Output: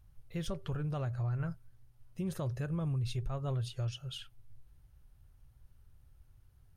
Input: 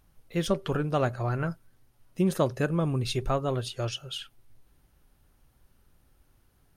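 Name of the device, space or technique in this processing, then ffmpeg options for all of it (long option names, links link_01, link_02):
car stereo with a boomy subwoofer: -af "lowshelf=frequency=160:width_type=q:width=1.5:gain=11,alimiter=limit=-20.5dB:level=0:latency=1:release=146,volume=-8dB"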